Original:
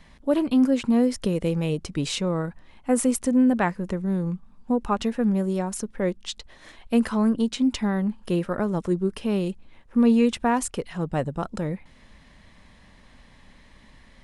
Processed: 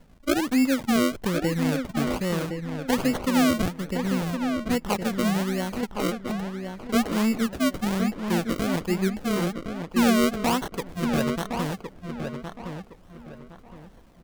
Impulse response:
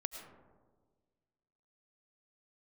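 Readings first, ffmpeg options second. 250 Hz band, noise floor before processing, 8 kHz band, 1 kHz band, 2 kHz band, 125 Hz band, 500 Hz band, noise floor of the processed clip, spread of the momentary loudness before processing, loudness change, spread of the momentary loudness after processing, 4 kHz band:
−1.5 dB, −53 dBFS, −0.5 dB, +1.0 dB, +5.0 dB, −0.5 dB, −1.5 dB, −50 dBFS, 10 LU, −1.0 dB, 12 LU, +3.0 dB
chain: -filter_complex "[0:a]acrusher=samples=35:mix=1:aa=0.000001:lfo=1:lforange=35:lforate=1.2,asplit=2[link_01][link_02];[link_02]adelay=1064,lowpass=frequency=2800:poles=1,volume=-6dB,asplit=2[link_03][link_04];[link_04]adelay=1064,lowpass=frequency=2800:poles=1,volume=0.3,asplit=2[link_05][link_06];[link_06]adelay=1064,lowpass=frequency=2800:poles=1,volume=0.3,asplit=2[link_07][link_08];[link_08]adelay=1064,lowpass=frequency=2800:poles=1,volume=0.3[link_09];[link_01][link_03][link_05][link_07][link_09]amix=inputs=5:normalize=0,volume=-2dB"

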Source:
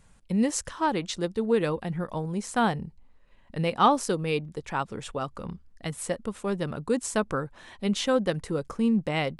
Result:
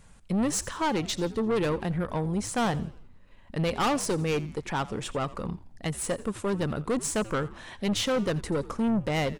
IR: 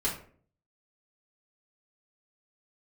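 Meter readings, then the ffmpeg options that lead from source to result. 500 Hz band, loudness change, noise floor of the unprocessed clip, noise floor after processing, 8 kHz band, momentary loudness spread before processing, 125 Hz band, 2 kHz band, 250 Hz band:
−1.0 dB, −1.0 dB, −58 dBFS, −52 dBFS, +2.5 dB, 10 LU, +1.5 dB, −0.5 dB, −1.0 dB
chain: -filter_complex "[0:a]aeval=exprs='(tanh(22.4*val(0)+0.25)-tanh(0.25))/22.4':channel_layout=same,asplit=5[link_01][link_02][link_03][link_04][link_05];[link_02]adelay=85,afreqshift=-98,volume=-18dB[link_06];[link_03]adelay=170,afreqshift=-196,volume=-24.2dB[link_07];[link_04]adelay=255,afreqshift=-294,volume=-30.4dB[link_08];[link_05]adelay=340,afreqshift=-392,volume=-36.6dB[link_09];[link_01][link_06][link_07][link_08][link_09]amix=inputs=5:normalize=0,volume=4.5dB"

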